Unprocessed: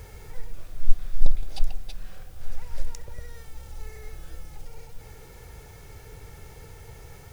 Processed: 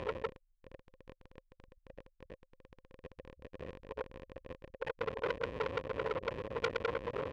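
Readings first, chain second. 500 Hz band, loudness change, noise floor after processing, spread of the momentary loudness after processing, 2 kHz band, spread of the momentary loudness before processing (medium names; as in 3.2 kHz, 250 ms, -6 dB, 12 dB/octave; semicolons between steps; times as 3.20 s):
+12.0 dB, +1.0 dB, -78 dBFS, 21 LU, +7.0 dB, 14 LU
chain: in parallel at -6 dB: sine folder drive 7 dB, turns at -1.5 dBFS; on the sum: feedback delay 75 ms, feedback 27%, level -23 dB; reverse; upward compressor, threshold -20 dBFS; reverse; spectral gate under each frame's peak -10 dB strong; compression, threshold -16 dBFS, peak gain reduction 12.5 dB; peaking EQ 1 kHz +10.5 dB 1.3 oct; power-law waveshaper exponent 0.35; vowel filter e; transformer saturation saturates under 2.1 kHz; trim +5.5 dB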